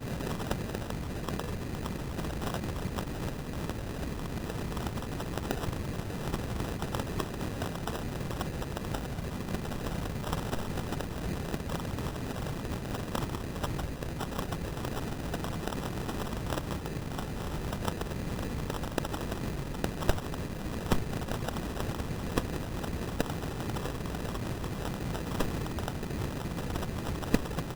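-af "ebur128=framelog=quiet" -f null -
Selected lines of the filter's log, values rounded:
Integrated loudness:
  I:         -35.6 LUFS
  Threshold: -45.6 LUFS
Loudness range:
  LRA:         1.6 LU
  Threshold: -55.6 LUFS
  LRA low:   -36.3 LUFS
  LRA high:  -34.7 LUFS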